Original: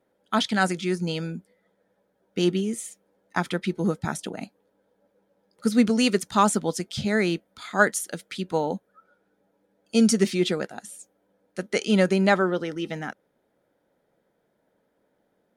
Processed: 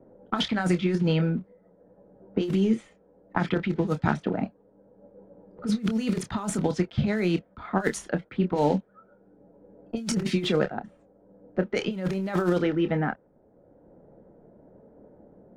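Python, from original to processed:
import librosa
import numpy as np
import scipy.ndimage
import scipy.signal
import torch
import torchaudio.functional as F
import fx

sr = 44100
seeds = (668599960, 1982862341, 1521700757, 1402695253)

y = fx.block_float(x, sr, bits=5)
y = fx.env_lowpass(y, sr, base_hz=640.0, full_db=-17.5)
y = fx.lowpass(y, sr, hz=2500.0, slope=6)
y = fx.low_shelf(y, sr, hz=94.0, db=9.0)
y = fx.over_compress(y, sr, threshold_db=-25.0, ratio=-0.5)
y = fx.chorus_voices(y, sr, voices=2, hz=0.83, base_ms=27, depth_ms=1.3, mix_pct=25)
y = fx.band_squash(y, sr, depth_pct=40)
y = y * 10.0 ** (4.0 / 20.0)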